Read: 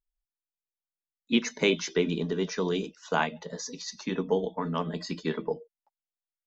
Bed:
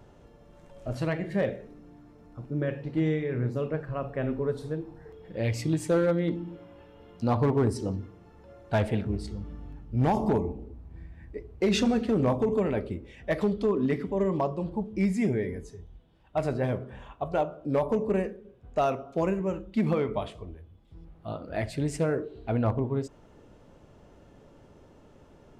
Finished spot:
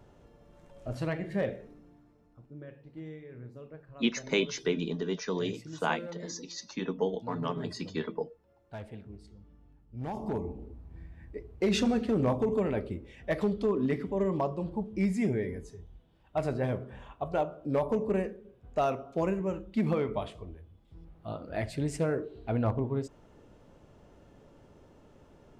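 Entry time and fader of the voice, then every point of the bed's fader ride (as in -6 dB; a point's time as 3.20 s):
2.70 s, -3.5 dB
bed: 1.68 s -3.5 dB
2.63 s -17 dB
9.83 s -17 dB
10.63 s -2.5 dB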